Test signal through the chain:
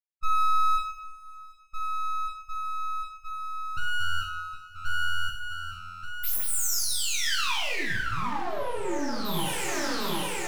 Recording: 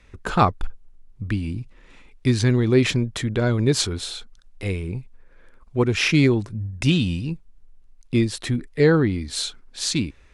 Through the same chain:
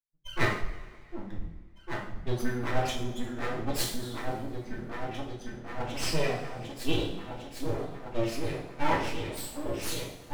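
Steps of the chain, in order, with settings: expander on every frequency bin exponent 3; delay with an opening low-pass 753 ms, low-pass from 200 Hz, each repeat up 2 oct, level -3 dB; full-wave rectifier; two-slope reverb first 0.6 s, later 2.3 s, from -18 dB, DRR -3 dB; in parallel at -11 dB: one-sided clip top -24 dBFS; on the sum: trim -7 dB

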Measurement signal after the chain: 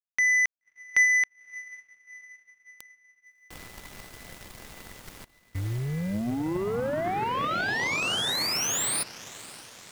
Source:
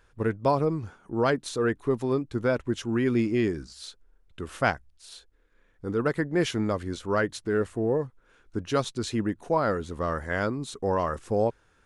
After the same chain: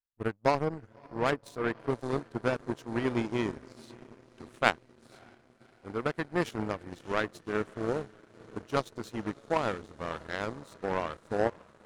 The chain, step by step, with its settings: echo that smears into a reverb 577 ms, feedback 76%, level -12 dB; power-law waveshaper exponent 2; trim +5 dB

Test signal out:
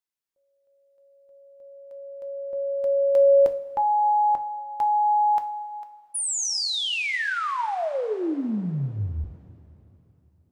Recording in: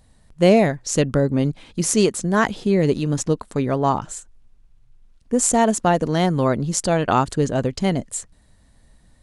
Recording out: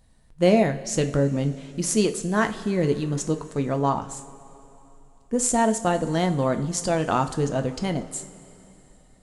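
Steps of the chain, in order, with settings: two-slope reverb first 0.35 s, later 3.3 s, from -17 dB, DRR 6.5 dB; trim -5 dB

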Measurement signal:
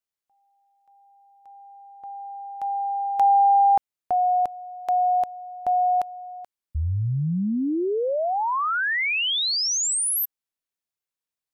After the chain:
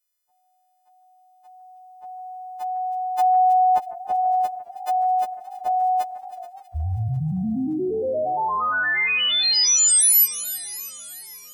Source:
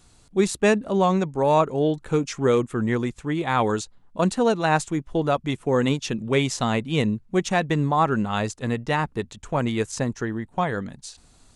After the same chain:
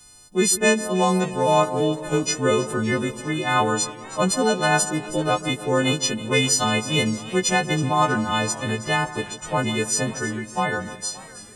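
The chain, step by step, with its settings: partials quantised in pitch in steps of 3 st; two-band feedback delay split 2 kHz, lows 151 ms, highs 320 ms, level -15 dB; modulated delay 568 ms, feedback 59%, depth 126 cents, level -21 dB

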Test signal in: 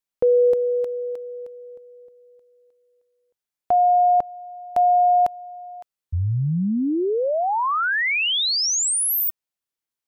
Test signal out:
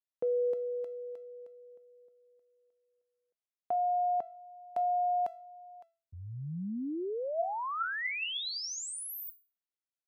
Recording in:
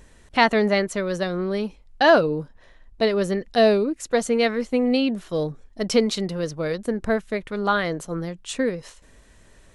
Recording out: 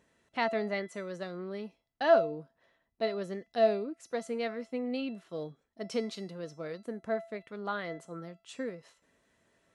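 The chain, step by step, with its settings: high-pass 150 Hz 12 dB/octave; treble shelf 5 kHz -8 dB; feedback comb 670 Hz, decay 0.36 s, mix 80%

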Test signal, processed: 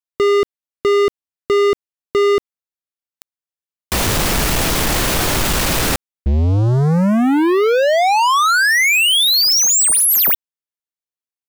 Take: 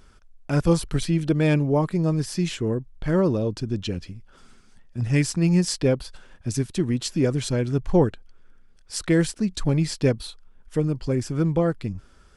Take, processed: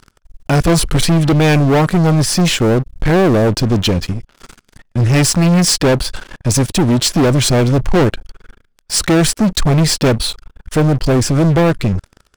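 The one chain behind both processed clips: waveshaping leveller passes 5

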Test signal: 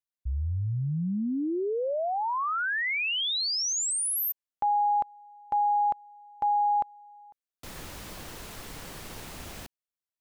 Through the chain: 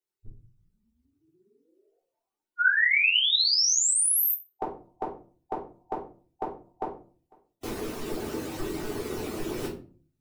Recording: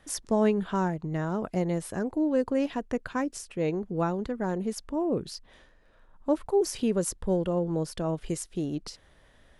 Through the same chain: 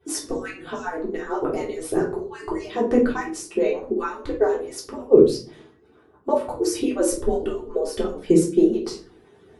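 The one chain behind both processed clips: harmonic-percussive separation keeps percussive; peaking EQ 390 Hz +14.5 dB 0.98 oct; simulated room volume 270 m³, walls furnished, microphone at 3.5 m

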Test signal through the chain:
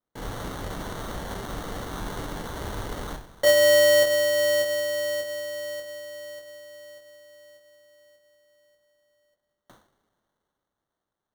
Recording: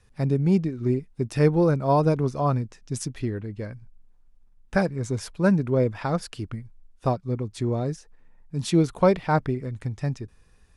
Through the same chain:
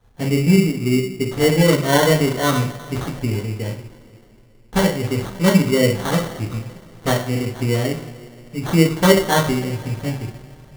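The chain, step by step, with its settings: two-slope reverb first 0.44 s, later 3.2 s, from -21 dB, DRR -7 dB; sample-rate reducer 2.5 kHz, jitter 0%; trim -1.5 dB

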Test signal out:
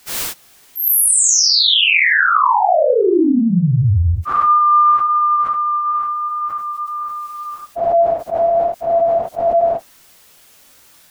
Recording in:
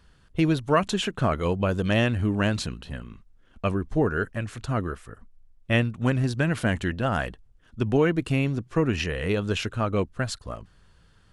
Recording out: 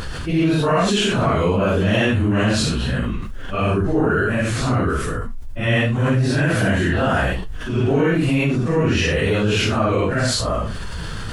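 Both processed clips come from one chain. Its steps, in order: phase randomisation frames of 200 ms; level flattener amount 70%; trim +2.5 dB

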